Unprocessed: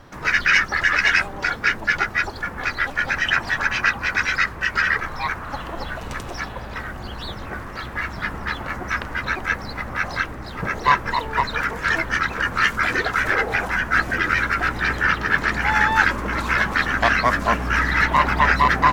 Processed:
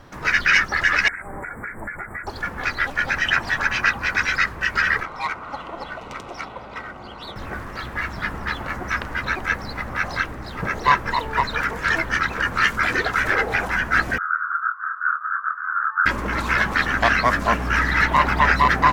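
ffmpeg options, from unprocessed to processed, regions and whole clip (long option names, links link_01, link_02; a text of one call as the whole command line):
ffmpeg -i in.wav -filter_complex "[0:a]asettb=1/sr,asplit=3[link_01][link_02][link_03];[link_01]atrim=end=1.084[link_04];[link_02]atrim=start=1.08:end=2.27,asetpts=PTS-STARTPTS,afade=type=in:duration=0.004:curve=qsin,afade=type=out:start_time=1.186:duration=0.004:curve=qsin,equalizer=frequency=7000:width=1.6:gain=9.5,acompressor=threshold=-27dB:ratio=10:attack=3.2:release=140:knee=1:detection=peak,asuperstop=centerf=4300:order=20:qfactor=0.78[link_05];[link_03]atrim=start=2.266[link_06];[link_04][link_05]acrossfade=duration=0.004:curve1=hsin:curve2=qsin[link_07];[link_07][link_06]acrossfade=duration=0.004:curve1=qsin:curve2=hsin,asettb=1/sr,asplit=3[link_08][link_09][link_10];[link_08]atrim=end=5.034[link_11];[link_09]atrim=start=5.03:end=7.36,asetpts=PTS-STARTPTS,afade=type=in:duration=0.004:curve=qsin,afade=type=out:start_time=2.326:duration=0.004:curve=qsin,asuperstop=centerf=1700:order=4:qfactor=6.1,aemphasis=mode=production:type=bsi,adynamicsmooth=sensitivity=1:basefreq=2300[link_12];[link_10]atrim=start=7.356[link_13];[link_11][link_12]acrossfade=duration=0.004:curve1=hsin:curve2=qsin[link_14];[link_14][link_13]acrossfade=duration=0.004:curve1=qsin:curve2=hsin,asettb=1/sr,asplit=3[link_15][link_16][link_17];[link_15]atrim=end=14.184[link_18];[link_16]atrim=start=14.18:end=16.06,asetpts=PTS-STARTPTS,afade=type=in:duration=0.004:curve=qsin,afade=type=out:start_time=1.876:duration=0.004:curve=qsin,asuperpass=centerf=1300:order=8:qfactor=3,asplit=2[link_19][link_20];[link_20]adelay=26,volume=-3.5dB[link_21];[link_19][link_21]amix=inputs=2:normalize=0,atrim=end_sample=82908[link_22];[link_17]atrim=start=16.056[link_23];[link_18][link_22]acrossfade=duration=0.004:curve1=hsin:curve2=qsin[link_24];[link_24][link_23]acrossfade=duration=0.004:curve1=qsin:curve2=hsin" out.wav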